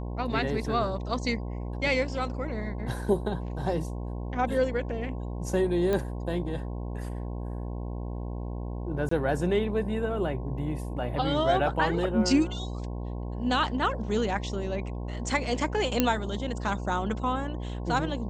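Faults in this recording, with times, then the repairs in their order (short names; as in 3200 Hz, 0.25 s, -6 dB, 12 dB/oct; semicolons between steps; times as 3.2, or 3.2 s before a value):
buzz 60 Hz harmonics 18 -34 dBFS
5.93 pop -16 dBFS
9.09–9.11 gap 24 ms
16 pop -7 dBFS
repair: de-click; de-hum 60 Hz, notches 18; interpolate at 9.09, 24 ms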